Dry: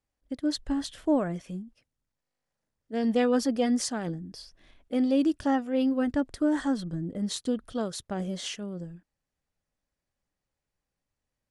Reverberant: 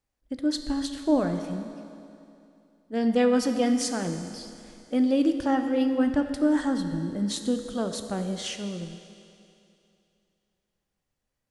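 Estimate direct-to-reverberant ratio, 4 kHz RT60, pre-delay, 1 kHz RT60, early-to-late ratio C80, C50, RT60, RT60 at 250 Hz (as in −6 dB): 6.5 dB, 2.7 s, 14 ms, 2.7 s, 8.5 dB, 7.5 dB, 2.7 s, 2.7 s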